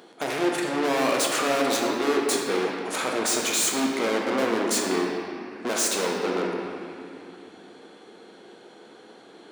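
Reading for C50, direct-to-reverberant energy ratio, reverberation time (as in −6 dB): 0.5 dB, −1.0 dB, 2.6 s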